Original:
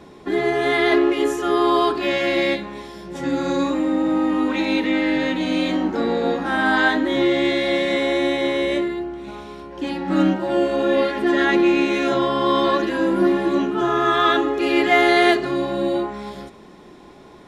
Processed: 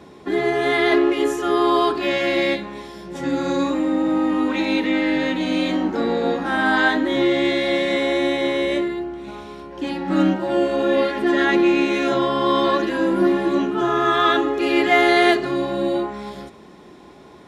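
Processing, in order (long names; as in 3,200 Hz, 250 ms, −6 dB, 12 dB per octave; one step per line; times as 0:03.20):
high-pass filter 48 Hz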